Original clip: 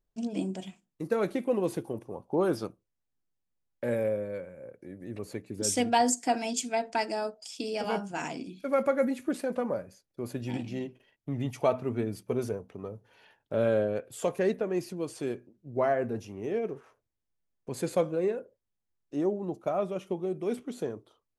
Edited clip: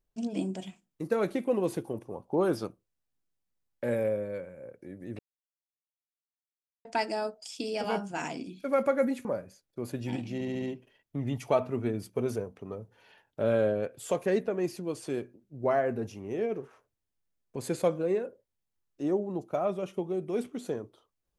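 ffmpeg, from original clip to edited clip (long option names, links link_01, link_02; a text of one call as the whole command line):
ffmpeg -i in.wav -filter_complex "[0:a]asplit=8[link_01][link_02][link_03][link_04][link_05][link_06][link_07][link_08];[link_01]atrim=end=5.19,asetpts=PTS-STARTPTS,afade=type=out:start_time=5.186:duration=0.004:curve=hsin[link_09];[link_02]atrim=start=5.19:end=6.85,asetpts=PTS-STARTPTS,volume=0[link_10];[link_03]atrim=start=6.85:end=9.252,asetpts=PTS-STARTPTS,afade=type=in:duration=0.004:curve=hsin[link_11];[link_04]atrim=start=9.658:end=10.822[link_12];[link_05]atrim=start=10.748:end=10.822[link_13];[link_06]atrim=start=10.748:end=10.822[link_14];[link_07]atrim=start=10.748:end=10.822[link_15];[link_08]atrim=start=10.748[link_16];[link_09][link_10][link_11]concat=n=3:v=0:a=1[link_17];[link_17][link_12]acrossfade=duration=0.004:curve1=hsin:curve2=hsin[link_18];[link_18][link_13]acrossfade=duration=0.004:curve1=hsin:curve2=hsin[link_19];[link_19][link_14]acrossfade=duration=0.004:curve1=hsin:curve2=hsin[link_20];[link_20][link_15]acrossfade=duration=0.004:curve1=hsin:curve2=hsin[link_21];[link_21][link_16]acrossfade=duration=0.004:curve1=hsin:curve2=hsin" out.wav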